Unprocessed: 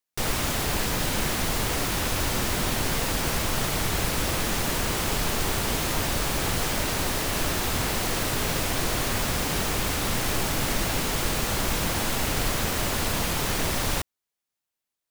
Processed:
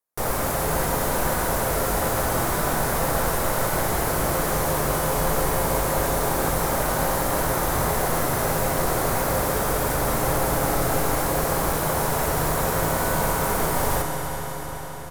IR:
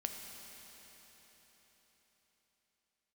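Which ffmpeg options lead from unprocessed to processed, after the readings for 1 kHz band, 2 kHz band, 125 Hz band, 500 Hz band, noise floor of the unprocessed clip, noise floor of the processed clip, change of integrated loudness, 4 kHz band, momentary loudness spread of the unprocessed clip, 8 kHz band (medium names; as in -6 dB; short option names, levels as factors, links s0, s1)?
+7.0 dB, +1.0 dB, +2.5 dB, +7.5 dB, under -85 dBFS, -30 dBFS, +2.5 dB, -5.5 dB, 0 LU, +1.0 dB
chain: -filter_complex "[0:a]firequalizer=gain_entry='entry(270,0);entry(520,7);entry(1000,6);entry(2800,-9);entry(11000,4)':delay=0.05:min_phase=1[s0];[1:a]atrim=start_sample=2205,asetrate=30429,aresample=44100[s1];[s0][s1]afir=irnorm=-1:irlink=0,volume=0.891"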